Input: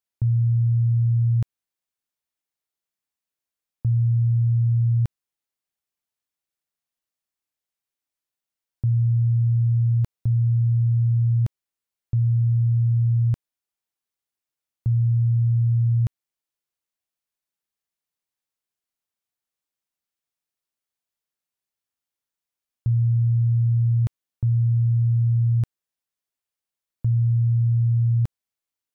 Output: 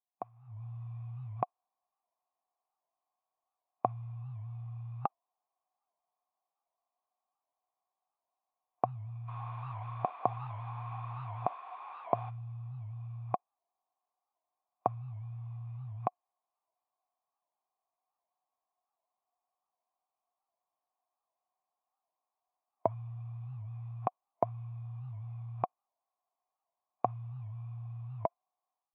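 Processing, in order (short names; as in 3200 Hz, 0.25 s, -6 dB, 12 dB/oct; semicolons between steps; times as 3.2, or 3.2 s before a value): spectral whitening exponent 0.6; limiter -20 dBFS, peak gain reduction 10 dB; AGC gain up to 12.5 dB; 9.27–12.29 added noise blue -28 dBFS; vocal tract filter a; spectral noise reduction 9 dB; HPF 210 Hz 24 dB/oct; record warp 78 rpm, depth 160 cents; gain +17 dB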